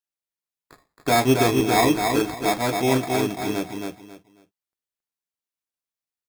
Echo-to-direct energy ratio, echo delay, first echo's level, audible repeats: -4.0 dB, 272 ms, -4.5 dB, 3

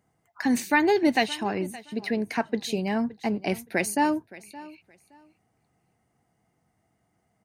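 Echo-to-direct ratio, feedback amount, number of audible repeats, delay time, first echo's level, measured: -19.0 dB, 21%, 2, 569 ms, -19.0 dB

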